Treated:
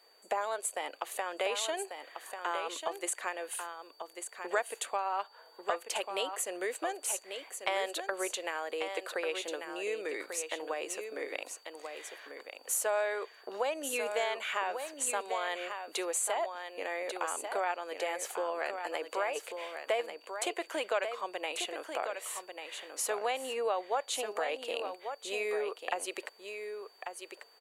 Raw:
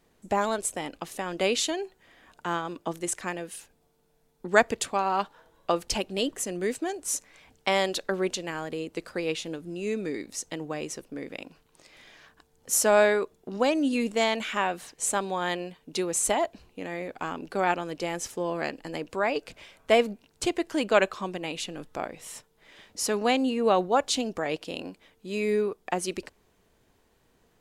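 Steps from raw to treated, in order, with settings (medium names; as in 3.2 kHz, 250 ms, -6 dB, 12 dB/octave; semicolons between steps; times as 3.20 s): high-pass 480 Hz 24 dB/octave; peaking EQ 5.2 kHz -12.5 dB 0.57 oct; compression 3:1, threshold -37 dBFS, peak gain reduction 17 dB; whistle 4.6 kHz -67 dBFS; on a send: delay 1142 ms -7.5 dB; on the sum: trim +4 dB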